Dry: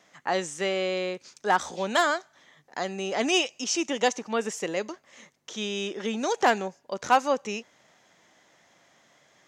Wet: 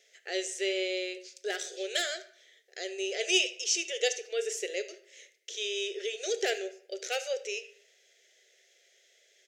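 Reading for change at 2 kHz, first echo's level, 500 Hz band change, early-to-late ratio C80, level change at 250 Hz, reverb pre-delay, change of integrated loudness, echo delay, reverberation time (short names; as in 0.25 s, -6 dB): -5.0 dB, -18.5 dB, -4.5 dB, 17.5 dB, -11.0 dB, 3 ms, -4.5 dB, 74 ms, 0.60 s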